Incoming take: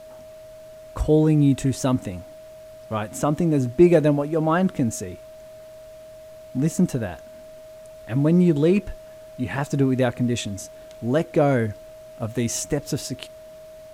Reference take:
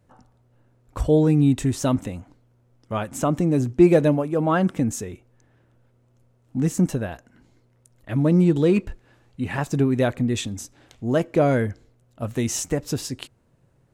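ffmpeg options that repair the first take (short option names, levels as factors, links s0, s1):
-af "bandreject=f=630:w=30,agate=range=0.0891:threshold=0.0178"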